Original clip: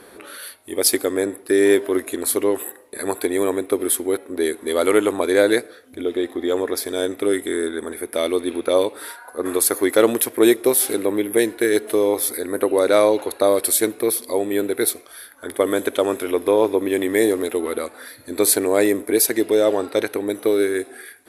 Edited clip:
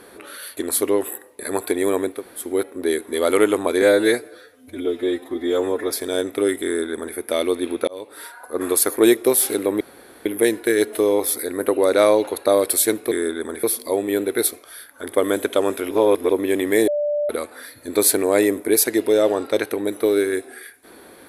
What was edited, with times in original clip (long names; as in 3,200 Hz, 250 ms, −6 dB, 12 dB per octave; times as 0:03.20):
0:00.57–0:02.11: remove
0:03.70–0:03.97: fill with room tone, crossfade 0.16 s
0:05.36–0:06.75: time-stretch 1.5×
0:07.49–0:08.01: duplicate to 0:14.06
0:08.72–0:09.22: fade in
0:09.81–0:10.36: remove
0:11.20: splice in room tone 0.45 s
0:16.33–0:16.72: reverse
0:17.30–0:17.72: beep over 589 Hz −18.5 dBFS